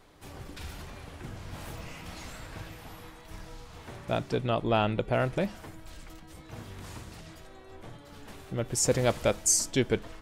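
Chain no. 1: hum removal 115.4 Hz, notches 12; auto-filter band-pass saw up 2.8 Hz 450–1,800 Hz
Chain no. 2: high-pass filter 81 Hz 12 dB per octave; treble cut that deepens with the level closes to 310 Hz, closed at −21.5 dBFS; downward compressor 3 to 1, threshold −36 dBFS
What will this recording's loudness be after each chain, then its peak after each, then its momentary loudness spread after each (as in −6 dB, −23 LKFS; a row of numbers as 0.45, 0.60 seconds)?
−37.0, −43.0 LKFS; −17.5, −23.0 dBFS; 23, 11 LU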